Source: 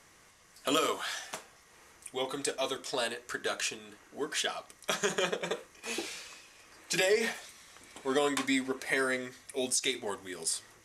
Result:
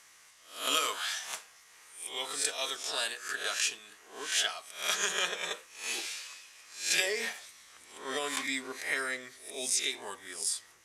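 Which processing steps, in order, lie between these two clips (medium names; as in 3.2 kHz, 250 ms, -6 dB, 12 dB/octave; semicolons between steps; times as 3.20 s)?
reverse spectral sustain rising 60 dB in 0.45 s; tilt shelf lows -9.5 dB, about 700 Hz, from 7.00 s lows -5.5 dB; trim -7 dB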